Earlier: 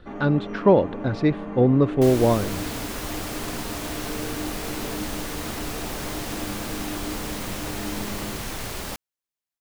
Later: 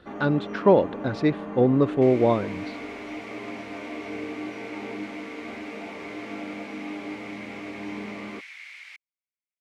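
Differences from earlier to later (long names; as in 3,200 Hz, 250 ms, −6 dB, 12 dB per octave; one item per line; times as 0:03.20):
second sound: add four-pole ladder band-pass 2,300 Hz, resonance 80%
master: add high-pass filter 190 Hz 6 dB per octave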